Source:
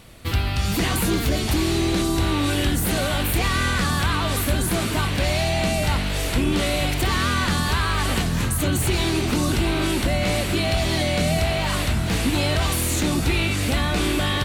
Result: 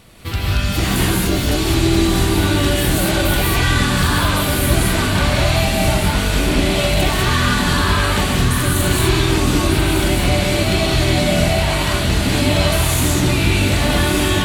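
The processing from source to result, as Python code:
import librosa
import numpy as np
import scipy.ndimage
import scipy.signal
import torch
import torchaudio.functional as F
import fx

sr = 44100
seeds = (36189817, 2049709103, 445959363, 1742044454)

y = x + 10.0 ** (-7.0 / 20.0) * np.pad(x, (int(1197 * sr / 1000.0), 0))[:len(x)]
y = fx.rev_gated(y, sr, seeds[0], gate_ms=230, shape='rising', drr_db=-3.0)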